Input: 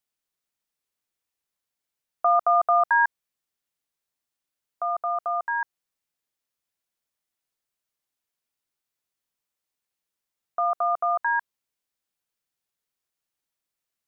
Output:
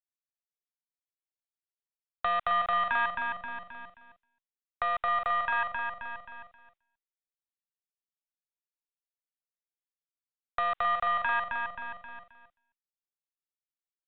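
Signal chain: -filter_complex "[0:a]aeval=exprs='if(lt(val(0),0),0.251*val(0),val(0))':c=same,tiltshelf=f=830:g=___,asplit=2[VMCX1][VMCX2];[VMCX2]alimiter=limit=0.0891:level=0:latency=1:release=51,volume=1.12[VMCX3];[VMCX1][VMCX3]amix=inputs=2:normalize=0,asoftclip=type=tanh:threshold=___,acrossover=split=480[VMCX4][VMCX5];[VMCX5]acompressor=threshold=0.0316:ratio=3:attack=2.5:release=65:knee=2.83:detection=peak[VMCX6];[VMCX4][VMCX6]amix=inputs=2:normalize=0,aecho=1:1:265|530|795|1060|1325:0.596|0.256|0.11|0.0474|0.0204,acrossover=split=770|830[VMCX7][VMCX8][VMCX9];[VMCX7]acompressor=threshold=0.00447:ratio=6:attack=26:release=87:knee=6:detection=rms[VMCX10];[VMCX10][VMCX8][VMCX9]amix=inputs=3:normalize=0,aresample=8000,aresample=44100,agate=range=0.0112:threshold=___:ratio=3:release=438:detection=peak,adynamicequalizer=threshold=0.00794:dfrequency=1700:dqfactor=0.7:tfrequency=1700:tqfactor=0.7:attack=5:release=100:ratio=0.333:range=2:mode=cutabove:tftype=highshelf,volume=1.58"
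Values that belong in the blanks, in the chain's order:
-4, 0.168, 0.00355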